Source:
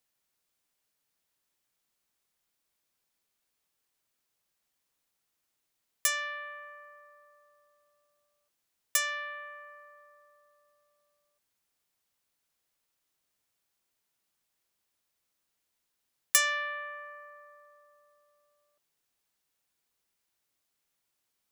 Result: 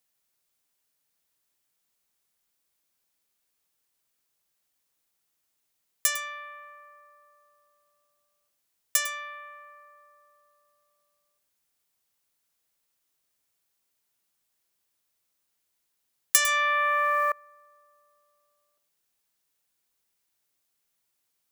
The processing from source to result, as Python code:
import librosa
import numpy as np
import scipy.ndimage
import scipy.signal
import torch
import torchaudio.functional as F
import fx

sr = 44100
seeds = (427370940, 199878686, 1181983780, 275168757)

y = fx.high_shelf(x, sr, hz=6600.0, db=5.0)
y = y + 10.0 ** (-13.0 / 20.0) * np.pad(y, (int(103 * sr / 1000.0), 0))[:len(y)]
y = fx.env_flatten(y, sr, amount_pct=100, at=(16.38, 17.32))